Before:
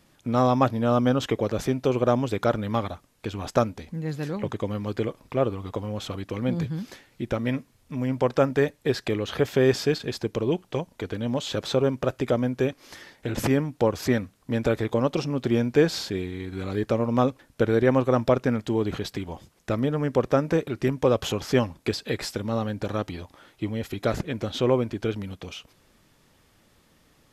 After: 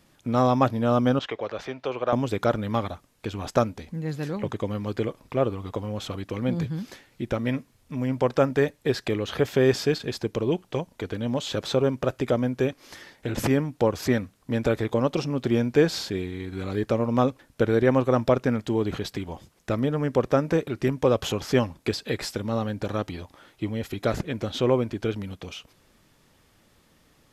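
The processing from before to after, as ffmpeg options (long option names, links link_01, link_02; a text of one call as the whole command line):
ffmpeg -i in.wav -filter_complex "[0:a]asettb=1/sr,asplit=3[link_01][link_02][link_03];[link_01]atrim=end=1.194[link_04];[link_02]atrim=start=1.19:end=2.13,asetpts=PTS-STARTPTS,afade=type=in:duration=0.004:curve=qsin,afade=type=out:start_time=0.936:duration=0.004:curve=qsin,acrossover=split=500 4700:gain=0.178 1 0.0708[link_05][link_06][link_07];[link_05][link_06][link_07]amix=inputs=3:normalize=0[link_08];[link_03]atrim=start=2.126[link_09];[link_04][link_08]acrossfade=duration=0.004:curve1=hsin:curve2=qsin[link_10];[link_10][link_09]acrossfade=duration=0.004:curve1=qsin:curve2=hsin" out.wav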